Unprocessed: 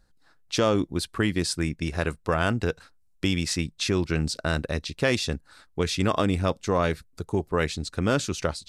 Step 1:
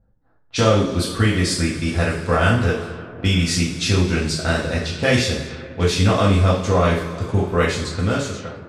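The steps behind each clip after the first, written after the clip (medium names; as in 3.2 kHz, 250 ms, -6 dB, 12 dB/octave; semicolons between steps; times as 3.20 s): fade out at the end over 0.94 s; two-slope reverb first 0.52 s, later 4 s, from -18 dB, DRR -6 dB; level-controlled noise filter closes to 670 Hz, open at -20 dBFS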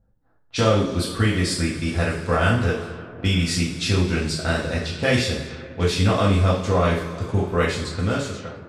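dynamic bell 6.3 kHz, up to -5 dB, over -47 dBFS, Q 7; trim -2.5 dB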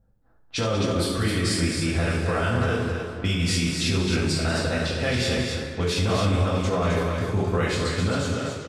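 peak limiter -16 dBFS, peak gain reduction 10.5 dB; on a send: loudspeakers at several distances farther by 24 m -11 dB, 65 m -11 dB, 90 m -5 dB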